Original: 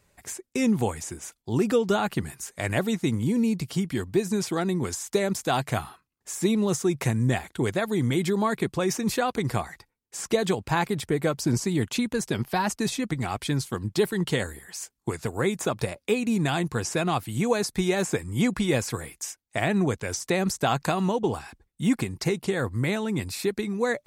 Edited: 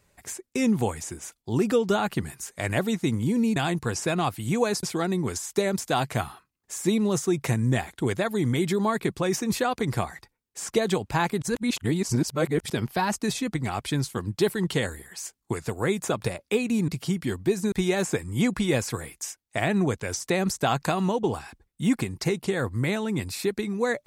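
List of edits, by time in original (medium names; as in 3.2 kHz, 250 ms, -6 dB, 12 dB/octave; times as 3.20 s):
3.56–4.40 s: swap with 16.45–17.72 s
10.99–12.27 s: reverse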